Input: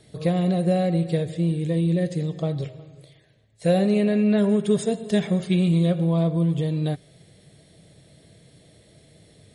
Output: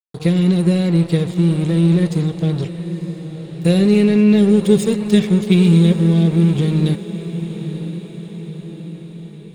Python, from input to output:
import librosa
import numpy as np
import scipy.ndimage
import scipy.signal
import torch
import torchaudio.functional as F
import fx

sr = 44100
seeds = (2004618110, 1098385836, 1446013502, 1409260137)

p1 = fx.band_shelf(x, sr, hz=920.0, db=-15.5, octaves=1.7)
p2 = np.sign(p1) * np.maximum(np.abs(p1) - 10.0 ** (-38.5 / 20.0), 0.0)
p3 = p2 + fx.echo_diffused(p2, sr, ms=957, feedback_pct=56, wet_db=-12.0, dry=0)
y = p3 * 10.0 ** (9.0 / 20.0)